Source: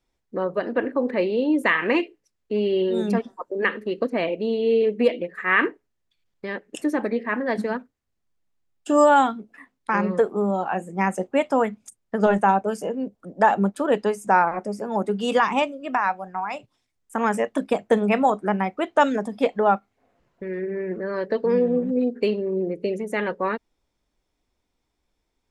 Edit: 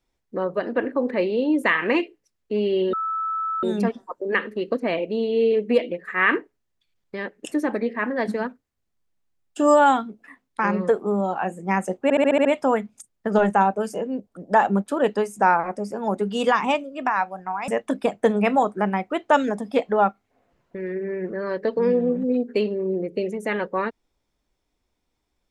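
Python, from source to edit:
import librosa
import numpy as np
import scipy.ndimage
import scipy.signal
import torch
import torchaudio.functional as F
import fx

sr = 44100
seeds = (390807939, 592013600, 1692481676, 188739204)

y = fx.edit(x, sr, fx.insert_tone(at_s=2.93, length_s=0.7, hz=1310.0, db=-23.0),
    fx.stutter(start_s=11.33, slice_s=0.07, count=7),
    fx.cut(start_s=16.56, length_s=0.79), tone=tone)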